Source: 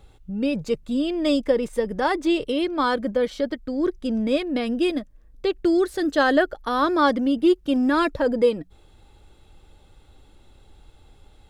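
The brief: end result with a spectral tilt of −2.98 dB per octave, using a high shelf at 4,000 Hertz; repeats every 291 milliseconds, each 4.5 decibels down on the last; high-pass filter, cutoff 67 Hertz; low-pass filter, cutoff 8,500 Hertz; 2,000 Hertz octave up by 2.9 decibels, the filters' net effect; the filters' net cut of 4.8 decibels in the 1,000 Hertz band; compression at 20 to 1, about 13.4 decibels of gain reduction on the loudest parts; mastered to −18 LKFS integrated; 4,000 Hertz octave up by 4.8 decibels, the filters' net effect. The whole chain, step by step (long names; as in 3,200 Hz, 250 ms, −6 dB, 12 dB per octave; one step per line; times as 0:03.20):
high-pass filter 67 Hz
low-pass filter 8,500 Hz
parametric band 1,000 Hz −8.5 dB
parametric band 2,000 Hz +7 dB
high-shelf EQ 4,000 Hz −5 dB
parametric band 4,000 Hz +7 dB
downward compressor 20 to 1, threshold −27 dBFS
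repeating echo 291 ms, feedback 60%, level −4.5 dB
level +12.5 dB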